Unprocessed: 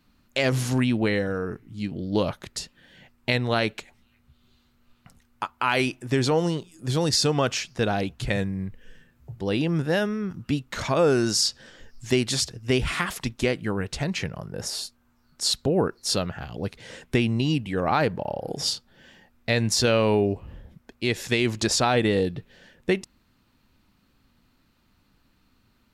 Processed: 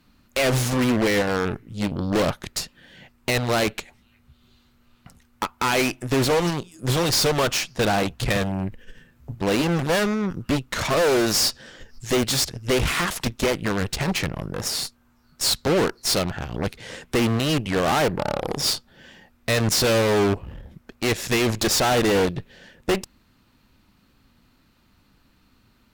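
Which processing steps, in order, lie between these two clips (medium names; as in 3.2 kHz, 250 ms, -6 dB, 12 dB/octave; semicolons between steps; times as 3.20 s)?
hard clipper -22 dBFS, distortion -9 dB; Chebyshev shaper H 2 -12 dB, 4 -10 dB, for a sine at -22 dBFS; trim +4.5 dB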